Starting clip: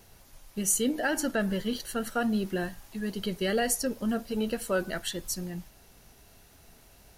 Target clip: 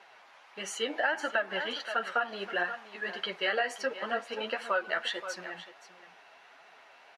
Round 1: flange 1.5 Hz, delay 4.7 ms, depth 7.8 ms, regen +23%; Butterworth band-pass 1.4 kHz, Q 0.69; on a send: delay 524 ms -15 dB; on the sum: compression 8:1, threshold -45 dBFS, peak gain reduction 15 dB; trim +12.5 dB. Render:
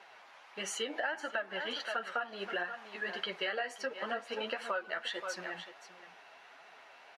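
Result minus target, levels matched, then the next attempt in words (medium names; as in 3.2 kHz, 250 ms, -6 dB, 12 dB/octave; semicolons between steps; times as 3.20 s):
compression: peak gain reduction +6.5 dB
flange 1.5 Hz, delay 4.7 ms, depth 7.8 ms, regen +23%; Butterworth band-pass 1.4 kHz, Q 0.69; on a send: delay 524 ms -15 dB; on the sum: compression 8:1, threshold -37.5 dBFS, peak gain reduction 8.5 dB; trim +12.5 dB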